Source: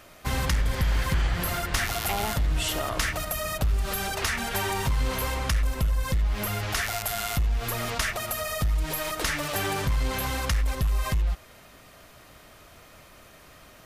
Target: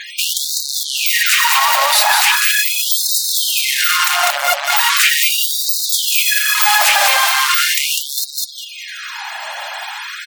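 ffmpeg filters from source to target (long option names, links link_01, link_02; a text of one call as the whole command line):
ffmpeg -i in.wav -af "volume=28.5dB,asoftclip=hard,volume=-28.5dB,highpass=frequency=190:width=0.5412,highpass=frequency=190:width=1.3066,aecho=1:1:271|542|813:0.596|0.137|0.0315,asetrate=59535,aresample=44100,afftfilt=real='re*gte(hypot(re,im),0.00224)':imag='im*gte(hypot(re,im),0.00224)':win_size=1024:overlap=0.75,alimiter=level_in=28dB:limit=-1dB:release=50:level=0:latency=1,afftfilt=real='re*gte(b*sr/1024,530*pow(3700/530,0.5+0.5*sin(2*PI*0.39*pts/sr)))':imag='im*gte(b*sr/1024,530*pow(3700/530,0.5+0.5*sin(2*PI*0.39*pts/sr)))':win_size=1024:overlap=0.75,volume=-2dB" out.wav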